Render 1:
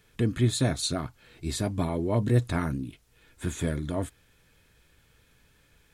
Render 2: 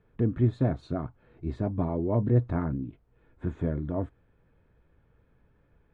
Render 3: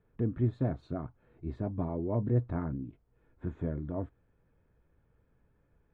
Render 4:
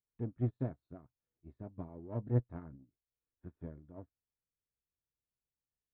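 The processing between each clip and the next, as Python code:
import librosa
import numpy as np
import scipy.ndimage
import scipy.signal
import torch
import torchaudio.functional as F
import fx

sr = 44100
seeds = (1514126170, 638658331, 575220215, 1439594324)

y1 = scipy.signal.sosfilt(scipy.signal.butter(2, 1000.0, 'lowpass', fs=sr, output='sos'), x)
y2 = fx.high_shelf(y1, sr, hz=3700.0, db=-8.5)
y2 = y2 * librosa.db_to_amplitude(-5.0)
y3 = fx.diode_clip(y2, sr, knee_db=-23.0)
y3 = fx.upward_expand(y3, sr, threshold_db=-46.0, expansion=2.5)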